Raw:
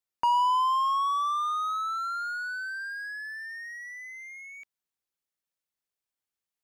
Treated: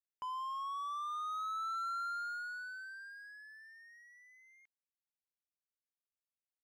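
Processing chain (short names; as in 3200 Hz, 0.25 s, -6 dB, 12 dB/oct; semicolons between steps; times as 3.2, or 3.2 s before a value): Doppler pass-by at 2.04, 20 m/s, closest 11 m; gain -6.5 dB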